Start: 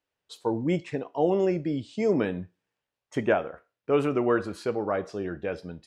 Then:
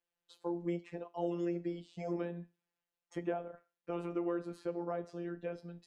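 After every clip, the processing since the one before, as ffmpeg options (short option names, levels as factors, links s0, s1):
-filter_complex "[0:a]afftfilt=real='hypot(re,im)*cos(PI*b)':imag='0':win_size=1024:overlap=0.75,acrossover=split=220|990|2000[s0][s1][s2][s3];[s0]acompressor=threshold=0.00562:ratio=4[s4];[s1]acompressor=threshold=0.0398:ratio=4[s5];[s2]acompressor=threshold=0.00224:ratio=4[s6];[s3]acompressor=threshold=0.00158:ratio=4[s7];[s4][s5][s6][s7]amix=inputs=4:normalize=0,volume=0.596"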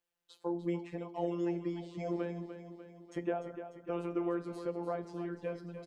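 -af "aecho=1:1:297|594|891|1188|1485|1782:0.316|0.174|0.0957|0.0526|0.0289|0.0159,volume=1.19"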